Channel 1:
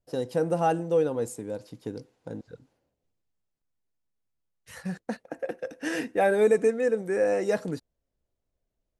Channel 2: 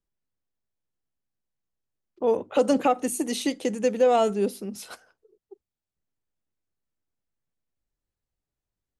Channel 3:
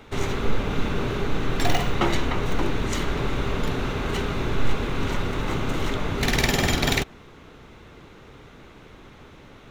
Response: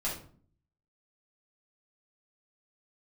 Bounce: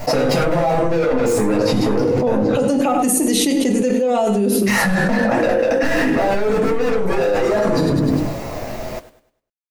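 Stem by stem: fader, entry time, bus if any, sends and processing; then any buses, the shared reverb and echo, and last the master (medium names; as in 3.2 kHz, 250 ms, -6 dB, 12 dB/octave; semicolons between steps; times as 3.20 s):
+1.0 dB, 0.00 s, bus A, send -6 dB, echo send -13.5 dB, overdrive pedal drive 34 dB, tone 1 kHz, clips at -11.5 dBFS
-4.5 dB, 0.00 s, no bus, send -9 dB, echo send -12 dB, bass shelf 320 Hz +8 dB
mute
bus A: 0.0 dB, static phaser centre 2.2 kHz, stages 8; peak limiter -24.5 dBFS, peak gain reduction 10 dB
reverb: on, RT60 0.50 s, pre-delay 5 ms
echo: feedback delay 101 ms, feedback 35%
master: treble shelf 10 kHz +10 dB; flange 0.3 Hz, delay 6.6 ms, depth 2.3 ms, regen -42%; level flattener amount 100%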